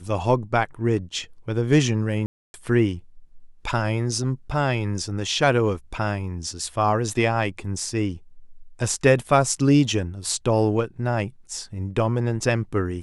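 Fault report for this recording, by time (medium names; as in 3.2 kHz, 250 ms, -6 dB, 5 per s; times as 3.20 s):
2.26–2.54 s: dropout 281 ms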